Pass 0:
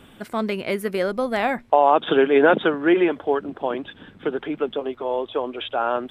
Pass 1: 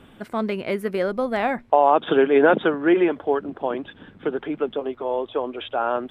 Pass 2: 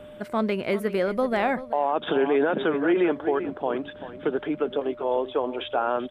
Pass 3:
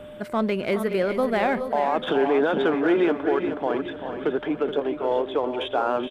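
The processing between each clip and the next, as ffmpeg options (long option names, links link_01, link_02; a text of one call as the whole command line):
ffmpeg -i in.wav -af "highshelf=frequency=3300:gain=-8" out.wav
ffmpeg -i in.wav -af "aecho=1:1:386:0.188,aeval=exprs='val(0)+0.00794*sin(2*PI*600*n/s)':channel_layout=same,alimiter=limit=-14dB:level=0:latency=1:release=75" out.wav
ffmpeg -i in.wav -filter_complex "[0:a]asplit=2[link_01][link_02];[link_02]asoftclip=type=tanh:threshold=-31dB,volume=-8dB[link_03];[link_01][link_03]amix=inputs=2:normalize=0,aecho=1:1:423|846|1269|1692:0.355|0.138|0.054|0.021" out.wav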